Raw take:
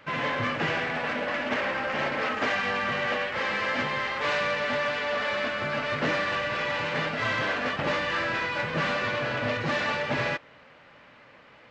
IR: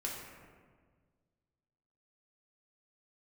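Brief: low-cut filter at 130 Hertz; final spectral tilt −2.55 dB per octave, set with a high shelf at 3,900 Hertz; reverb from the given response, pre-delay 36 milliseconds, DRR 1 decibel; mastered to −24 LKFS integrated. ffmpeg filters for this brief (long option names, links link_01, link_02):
-filter_complex "[0:a]highpass=130,highshelf=frequency=3900:gain=-9,asplit=2[link_01][link_02];[1:a]atrim=start_sample=2205,adelay=36[link_03];[link_02][link_03]afir=irnorm=-1:irlink=0,volume=-2.5dB[link_04];[link_01][link_04]amix=inputs=2:normalize=0,volume=1.5dB"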